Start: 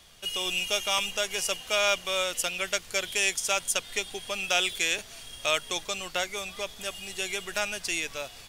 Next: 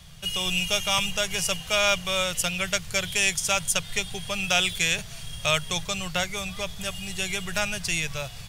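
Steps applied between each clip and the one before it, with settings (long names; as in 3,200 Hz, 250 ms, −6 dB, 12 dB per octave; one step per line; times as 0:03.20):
low shelf with overshoot 210 Hz +10 dB, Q 3
level +3 dB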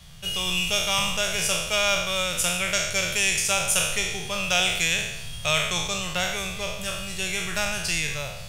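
peak hold with a decay on every bin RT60 0.90 s
level −1.5 dB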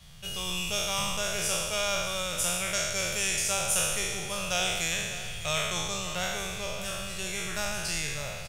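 peak hold with a decay on every bin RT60 1.44 s
dynamic equaliser 2,600 Hz, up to −5 dB, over −32 dBFS, Q 1.3
single-tap delay 601 ms −14.5 dB
level −6 dB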